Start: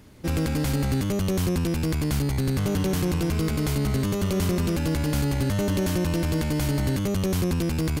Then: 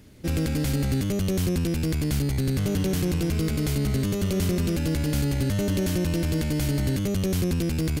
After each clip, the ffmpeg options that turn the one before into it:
-af "equalizer=f=1k:w=1.4:g=-7.5"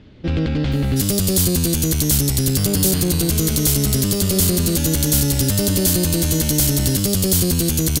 -filter_complex "[0:a]aexciter=amount=3.2:drive=5.8:freq=3.1k,acrossover=split=3100[a][b];[b]adelay=720[c];[a][c]amix=inputs=2:normalize=0,volume=5.5dB"

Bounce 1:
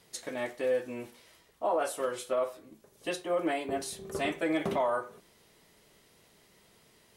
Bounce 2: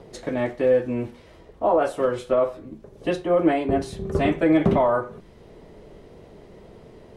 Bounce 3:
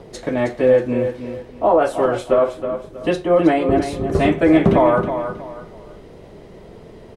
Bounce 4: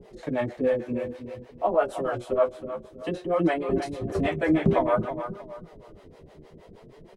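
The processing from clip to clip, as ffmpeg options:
-filter_complex "[0:a]aemphasis=mode=reproduction:type=riaa,acrossover=split=350|680|2100[a][b][c][d];[b]acompressor=mode=upward:threshold=-44dB:ratio=2.5[e];[a][e][c][d]amix=inputs=4:normalize=0,volume=7.5dB"
-af "aecho=1:1:319|638|957:0.355|0.106|0.0319,volume=5dB"
-filter_complex "[0:a]flanger=delay=4.8:depth=8.6:regen=43:speed=0.55:shape=sinusoidal,acrossover=split=420[a][b];[a]aeval=exprs='val(0)*(1-1/2+1/2*cos(2*PI*6.4*n/s))':c=same[c];[b]aeval=exprs='val(0)*(1-1/2-1/2*cos(2*PI*6.4*n/s))':c=same[d];[c][d]amix=inputs=2:normalize=0"

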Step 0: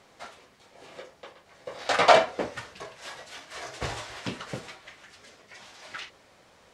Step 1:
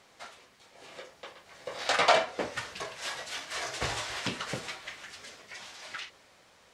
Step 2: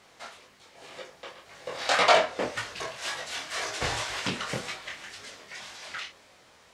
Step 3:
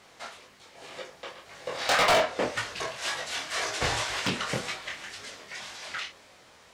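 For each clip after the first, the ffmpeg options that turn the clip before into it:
-af "acompressor=threshold=-39dB:ratio=1.5,tiltshelf=f=1.1k:g=-3,dynaudnorm=f=250:g=11:m=7dB,volume=-2.5dB"
-af "flanger=delay=19:depth=7:speed=1.9,volume=6dB"
-af "asoftclip=type=hard:threshold=-20dB,volume=2dB"

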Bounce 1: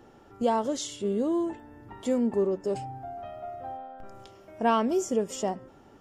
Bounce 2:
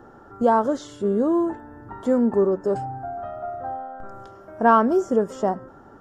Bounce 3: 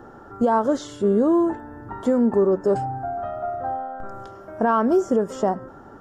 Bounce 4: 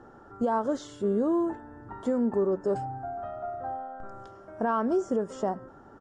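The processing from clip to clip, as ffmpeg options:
-filter_complex "[0:a]highshelf=f=1.9k:t=q:w=3:g=-8,acrossover=split=5100[a][b];[b]acompressor=threshold=-56dB:ratio=4:attack=1:release=60[c];[a][c]amix=inputs=2:normalize=0,volume=6dB"
-af "alimiter=limit=-14.5dB:level=0:latency=1:release=166,volume=3.5dB"
-af "aresample=22050,aresample=44100,volume=-7.5dB"

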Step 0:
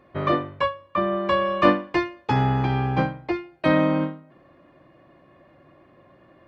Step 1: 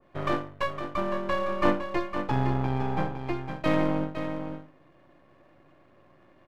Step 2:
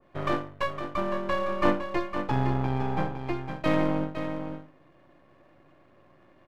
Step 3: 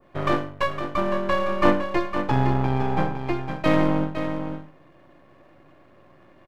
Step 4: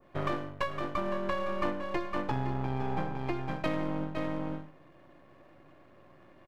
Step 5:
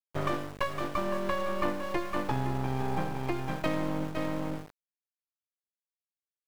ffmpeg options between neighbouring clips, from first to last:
-af "aeval=exprs='if(lt(val(0),0),0.251*val(0),val(0))':c=same,aecho=1:1:510:0.398,adynamicequalizer=threshold=0.0126:dfrequency=1500:dqfactor=0.7:tfrequency=1500:tqfactor=0.7:attack=5:release=100:ratio=0.375:range=2.5:mode=cutabove:tftype=highshelf,volume=-2.5dB"
-af anull
-af "aecho=1:1:102:0.133,volume=5dB"
-af "acompressor=threshold=-23dB:ratio=6,volume=-4dB"
-af "aeval=exprs='val(0)*gte(abs(val(0)),0.00668)':c=same,volume=1.5dB"

